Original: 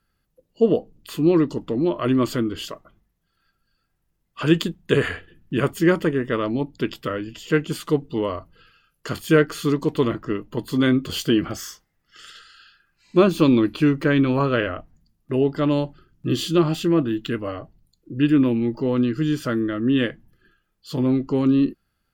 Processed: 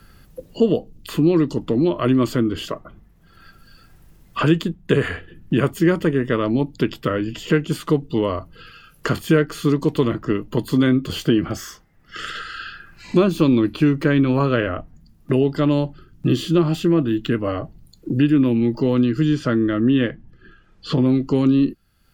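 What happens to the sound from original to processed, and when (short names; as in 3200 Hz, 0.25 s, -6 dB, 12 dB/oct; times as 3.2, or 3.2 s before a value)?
19.25–21.06 LPF 6100 Hz
whole clip: low shelf 260 Hz +5 dB; three-band squash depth 70%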